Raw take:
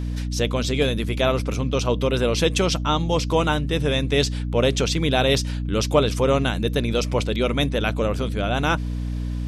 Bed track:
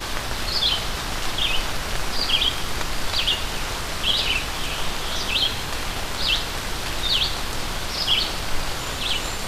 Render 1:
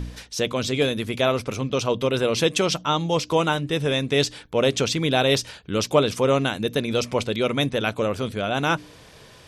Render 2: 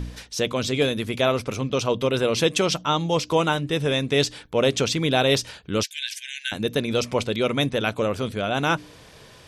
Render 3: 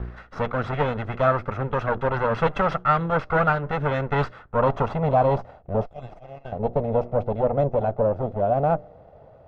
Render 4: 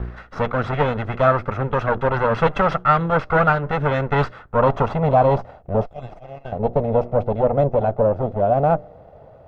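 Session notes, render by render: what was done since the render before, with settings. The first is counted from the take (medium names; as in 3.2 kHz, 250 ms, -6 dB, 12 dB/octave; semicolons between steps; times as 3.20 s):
de-hum 60 Hz, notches 5
5.83–6.52 s: brick-wall FIR high-pass 1.5 kHz
comb filter that takes the minimum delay 1.5 ms; low-pass sweep 1.4 kHz -> 690 Hz, 4.22–5.77 s
trim +4 dB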